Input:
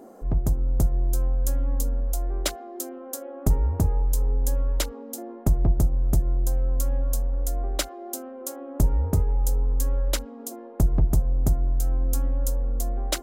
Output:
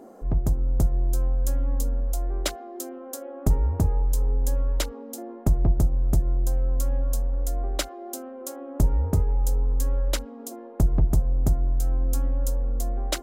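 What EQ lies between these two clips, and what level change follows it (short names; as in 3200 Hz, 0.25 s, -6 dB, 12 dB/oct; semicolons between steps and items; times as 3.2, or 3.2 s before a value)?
high shelf 7800 Hz -4.5 dB; 0.0 dB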